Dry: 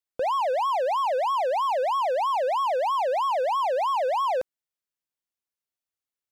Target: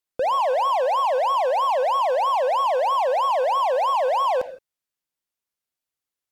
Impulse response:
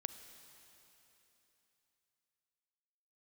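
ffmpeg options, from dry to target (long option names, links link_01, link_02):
-filter_complex "[1:a]atrim=start_sample=2205,atrim=end_sample=6615,asetrate=37926,aresample=44100[link_01];[0:a][link_01]afir=irnorm=-1:irlink=0,volume=5.5dB"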